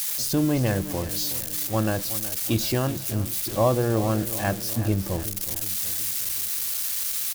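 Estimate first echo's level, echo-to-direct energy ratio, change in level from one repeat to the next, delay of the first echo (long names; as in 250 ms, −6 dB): −14.0 dB, −12.5 dB, −5.0 dB, 370 ms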